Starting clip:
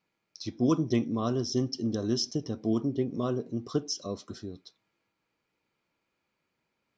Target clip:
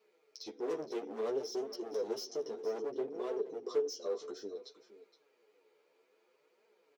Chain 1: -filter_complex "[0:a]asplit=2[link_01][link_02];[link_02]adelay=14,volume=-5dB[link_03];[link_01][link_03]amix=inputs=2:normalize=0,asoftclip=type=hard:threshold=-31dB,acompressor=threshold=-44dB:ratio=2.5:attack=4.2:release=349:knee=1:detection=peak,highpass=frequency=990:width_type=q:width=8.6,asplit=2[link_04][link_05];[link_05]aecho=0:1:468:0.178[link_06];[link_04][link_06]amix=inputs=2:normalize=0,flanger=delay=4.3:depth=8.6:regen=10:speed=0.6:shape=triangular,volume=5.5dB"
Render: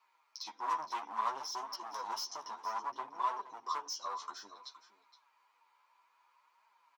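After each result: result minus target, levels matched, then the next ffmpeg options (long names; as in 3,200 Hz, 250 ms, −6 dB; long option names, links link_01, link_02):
500 Hz band −17.0 dB; downward compressor: peak gain reduction −4 dB
-filter_complex "[0:a]asplit=2[link_01][link_02];[link_02]adelay=14,volume=-5dB[link_03];[link_01][link_03]amix=inputs=2:normalize=0,asoftclip=type=hard:threshold=-31dB,acompressor=threshold=-44dB:ratio=2.5:attack=4.2:release=349:knee=1:detection=peak,highpass=frequency=440:width_type=q:width=8.6,asplit=2[link_04][link_05];[link_05]aecho=0:1:468:0.178[link_06];[link_04][link_06]amix=inputs=2:normalize=0,flanger=delay=4.3:depth=8.6:regen=10:speed=0.6:shape=triangular,volume=5.5dB"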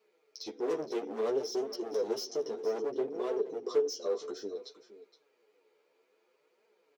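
downward compressor: peak gain reduction −4 dB
-filter_complex "[0:a]asplit=2[link_01][link_02];[link_02]adelay=14,volume=-5dB[link_03];[link_01][link_03]amix=inputs=2:normalize=0,asoftclip=type=hard:threshold=-31dB,acompressor=threshold=-51dB:ratio=2.5:attack=4.2:release=349:knee=1:detection=peak,highpass=frequency=440:width_type=q:width=8.6,asplit=2[link_04][link_05];[link_05]aecho=0:1:468:0.178[link_06];[link_04][link_06]amix=inputs=2:normalize=0,flanger=delay=4.3:depth=8.6:regen=10:speed=0.6:shape=triangular,volume=5.5dB"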